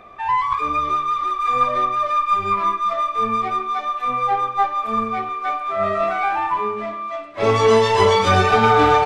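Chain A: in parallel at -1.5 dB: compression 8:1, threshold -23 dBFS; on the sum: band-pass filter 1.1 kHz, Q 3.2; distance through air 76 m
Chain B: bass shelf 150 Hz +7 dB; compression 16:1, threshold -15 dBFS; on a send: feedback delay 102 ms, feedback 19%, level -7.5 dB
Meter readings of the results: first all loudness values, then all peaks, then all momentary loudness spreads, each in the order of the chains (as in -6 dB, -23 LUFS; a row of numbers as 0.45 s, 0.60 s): -20.0 LUFS, -20.5 LUFS; -7.5 dBFS, -5.5 dBFS; 5 LU, 5 LU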